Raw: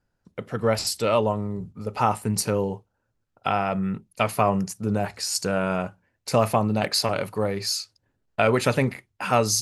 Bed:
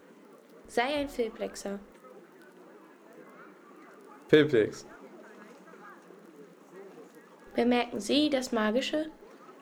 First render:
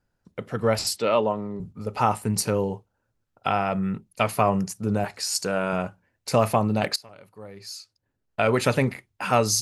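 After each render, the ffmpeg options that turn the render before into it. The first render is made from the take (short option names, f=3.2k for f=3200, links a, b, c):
-filter_complex "[0:a]asettb=1/sr,asplit=3[a][b][c];[a]atrim=end=0.964[d];[b]atrim=start=0.96:end=1.6,asetpts=PTS-STARTPTS,afade=t=in:d=0.004:c=qsin,afade=t=out:st=0.636:d=0.004:c=qsin,highpass=180,lowpass=4.6k[e];[c]atrim=start=1.596[f];[d][e]acrossfade=d=0.004:c1=hsin:c2=qsin[g];[g][f]acrossfade=d=0.004:c1=qsin:c2=hsin,asettb=1/sr,asplit=3[h][i][j];[h]atrim=end=5.044[k];[i]atrim=start=5.04:end=5.73,asetpts=PTS-STARTPTS,afade=t=in:d=0.004:c=qsin,afade=t=out:st=0.686:d=0.004:c=qsin,highpass=f=200:p=1[l];[j]atrim=start=5.726[m];[k][l]acrossfade=d=0.004:c1=hsin:c2=qsin[n];[n][m]acrossfade=d=0.004:c1=qsin:c2=hsin,asplit=2[o][p];[o]atrim=end=6.96,asetpts=PTS-STARTPTS,afade=t=out:st=6.956:d=0.004:c=hsin:silence=0.0668344[q];[p]atrim=start=6.96,asetpts=PTS-STARTPTS,afade=t=in:d=1.65:c=qua:silence=0.0668344[r];[q][r]concat=n=2:v=0:a=1"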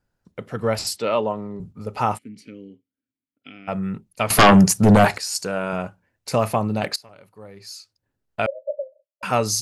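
-filter_complex "[0:a]asplit=3[a][b][c];[a]afade=t=out:st=2.17:d=0.02[d];[b]asplit=3[e][f][g];[e]bandpass=f=270:t=q:w=8,volume=0dB[h];[f]bandpass=f=2.29k:t=q:w=8,volume=-6dB[i];[g]bandpass=f=3.01k:t=q:w=8,volume=-9dB[j];[h][i][j]amix=inputs=3:normalize=0,afade=t=in:st=2.17:d=0.02,afade=t=out:st=3.67:d=0.02[k];[c]afade=t=in:st=3.67:d=0.02[l];[d][k][l]amix=inputs=3:normalize=0,asettb=1/sr,asplit=3[m][n][o];[m]atrim=end=4.304[p];[n]atrim=start=4.3:end=5.18,asetpts=PTS-STARTPTS,afade=t=in:d=0.004:c=qsin,afade=t=out:st=0.876:d=0.004:c=qsin,aeval=exprs='0.447*sin(PI/2*3.98*val(0)/0.447)':c=same[q];[o]atrim=start=5.176[r];[p][q]acrossfade=d=0.004:c1=hsin:c2=qsin[s];[s][r]acrossfade=d=0.004:c1=qsin:c2=hsin,asettb=1/sr,asplit=3[t][u][v];[t]atrim=end=8.464[w];[u]atrim=start=8.46:end=9.23,asetpts=PTS-STARTPTS,afade=t=in:d=0.004:c=qsin,afade=t=out:st=0.766:d=0.004:c=qsin,asuperpass=centerf=580:order=12:qfactor=4.9[x];[v]atrim=start=9.226[y];[w][x]acrossfade=d=0.004:c1=hsin:c2=qsin[z];[z][y]acrossfade=d=0.004:c1=qsin:c2=hsin"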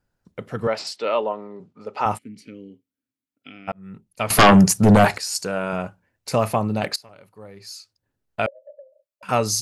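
-filter_complex "[0:a]asettb=1/sr,asplit=3[a][b][c];[a]atrim=end=0.674[d];[b]atrim=start=0.67:end=2.06,asetpts=PTS-STARTPTS,afade=t=in:d=0.004:c=qsin,afade=t=out:st=1.386:d=0.004:c=qsin,highpass=330,lowpass=4.7k[e];[c]atrim=start=2.056[f];[d][e]acrossfade=d=0.004:c1=hsin:c2=qsin[g];[g][f]acrossfade=d=0.004:c1=qsin:c2=hsin,asettb=1/sr,asplit=3[h][i][j];[h]atrim=end=8.484[k];[i]atrim=start=8.48:end=9.29,asetpts=PTS-STARTPTS,afade=t=in:d=0.004:c=qsin,afade=t=out:st=0.806:d=0.004:c=qsin,acompressor=threshold=-45dB:ratio=3:attack=3.2:release=140:knee=1:detection=peak[l];[j]atrim=start=9.286[m];[k][l]acrossfade=d=0.004:c1=hsin:c2=qsin[n];[n][m]acrossfade=d=0.004:c1=qsin:c2=hsin,asplit=2[o][p];[o]atrim=end=3.72,asetpts=PTS-STARTPTS,afade=t=out:st=3.716:d=0.004:c=hsin[q];[p]atrim=start=3.72,asetpts=PTS-STARTPTS,afade=t=in:d=0.65[r];[q][r]concat=n=2:v=0:a=1"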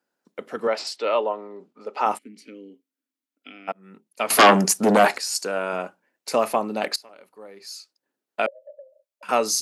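-af "highpass=f=250:w=0.5412,highpass=f=250:w=1.3066"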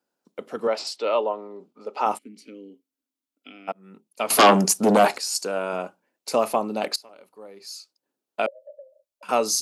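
-af "equalizer=f=1.8k:t=o:w=0.72:g=-6.5"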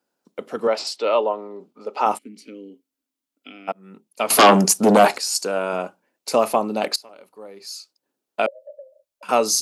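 -af "volume=3.5dB,alimiter=limit=-1dB:level=0:latency=1"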